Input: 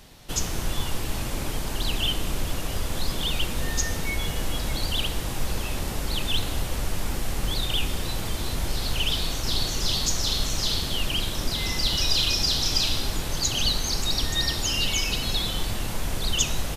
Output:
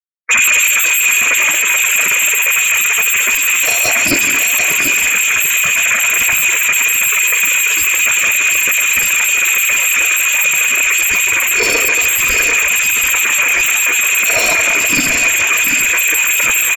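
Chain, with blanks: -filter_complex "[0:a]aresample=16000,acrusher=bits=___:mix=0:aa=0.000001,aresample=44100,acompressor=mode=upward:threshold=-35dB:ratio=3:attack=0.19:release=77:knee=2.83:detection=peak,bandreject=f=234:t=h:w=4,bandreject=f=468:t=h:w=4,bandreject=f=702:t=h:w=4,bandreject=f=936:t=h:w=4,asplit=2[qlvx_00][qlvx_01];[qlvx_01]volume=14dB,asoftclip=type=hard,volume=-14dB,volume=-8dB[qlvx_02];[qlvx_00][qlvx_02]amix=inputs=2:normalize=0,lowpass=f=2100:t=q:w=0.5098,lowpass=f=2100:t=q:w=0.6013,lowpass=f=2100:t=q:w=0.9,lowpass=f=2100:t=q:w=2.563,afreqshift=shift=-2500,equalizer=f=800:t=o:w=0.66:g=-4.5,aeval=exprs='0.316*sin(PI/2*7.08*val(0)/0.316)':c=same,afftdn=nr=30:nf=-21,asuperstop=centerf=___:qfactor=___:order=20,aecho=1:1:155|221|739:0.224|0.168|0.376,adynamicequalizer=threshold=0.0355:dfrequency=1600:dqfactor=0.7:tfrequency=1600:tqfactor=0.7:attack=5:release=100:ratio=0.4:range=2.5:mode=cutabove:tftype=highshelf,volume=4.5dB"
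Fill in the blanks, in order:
5, 800, 8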